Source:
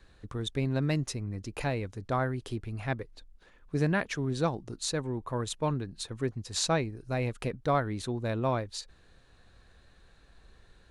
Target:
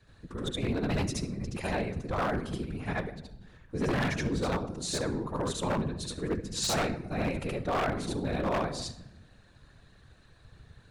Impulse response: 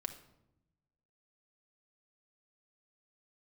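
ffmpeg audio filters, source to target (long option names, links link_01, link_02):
-filter_complex "[0:a]asplit=2[link_01][link_02];[1:a]atrim=start_sample=2205,adelay=73[link_03];[link_02][link_03]afir=irnorm=-1:irlink=0,volume=4dB[link_04];[link_01][link_04]amix=inputs=2:normalize=0,afftfilt=real='hypot(re,im)*cos(2*PI*random(0))':imag='hypot(re,im)*sin(2*PI*random(1))':win_size=512:overlap=0.75,aeval=exprs='0.0562*(abs(mod(val(0)/0.0562+3,4)-2)-1)':channel_layout=same,volume=2.5dB"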